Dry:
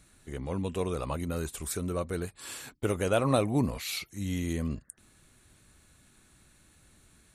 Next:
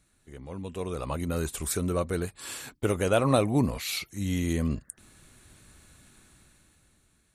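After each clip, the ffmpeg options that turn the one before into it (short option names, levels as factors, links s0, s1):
-af "dynaudnorm=f=200:g=11:m=4.47,volume=0.422"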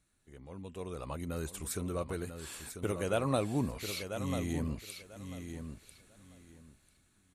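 -af "aecho=1:1:993|1986|2979:0.398|0.0796|0.0159,volume=0.398"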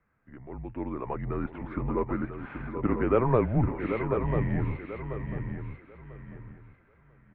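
-af "aecho=1:1:782:0.398,highpass=f=160:t=q:w=0.5412,highpass=f=160:t=q:w=1.307,lowpass=f=2200:t=q:w=0.5176,lowpass=f=2200:t=q:w=0.7071,lowpass=f=2200:t=q:w=1.932,afreqshift=-130,volume=2.66"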